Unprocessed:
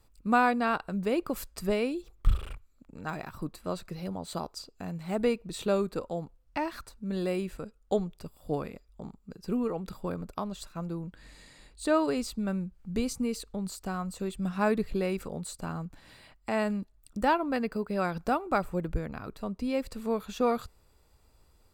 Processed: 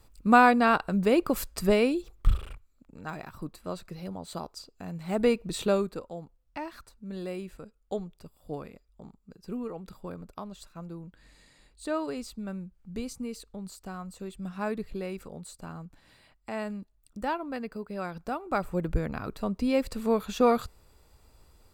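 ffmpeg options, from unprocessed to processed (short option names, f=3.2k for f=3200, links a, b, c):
-af "volume=22.5dB,afade=t=out:st=1.91:d=0.56:silence=0.421697,afade=t=in:st=4.84:d=0.66:silence=0.446684,afade=t=out:st=5.5:d=0.53:silence=0.298538,afade=t=in:st=18.35:d=0.71:silence=0.316228"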